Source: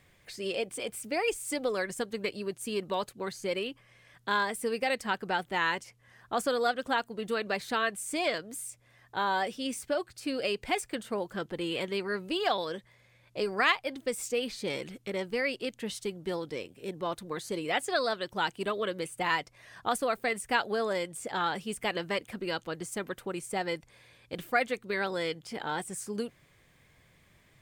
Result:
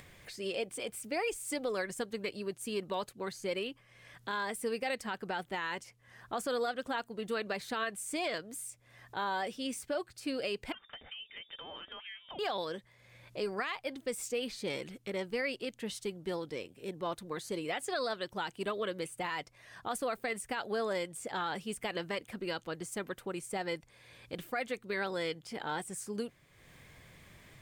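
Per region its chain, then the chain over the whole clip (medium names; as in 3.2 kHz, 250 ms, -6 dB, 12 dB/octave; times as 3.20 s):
10.72–12.39 s: elliptic band-stop 130–440 Hz + frequency inversion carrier 3.6 kHz + compression 10:1, threshold -39 dBFS
whole clip: upward compressor, threshold -43 dBFS; peak limiter -22 dBFS; trim -3 dB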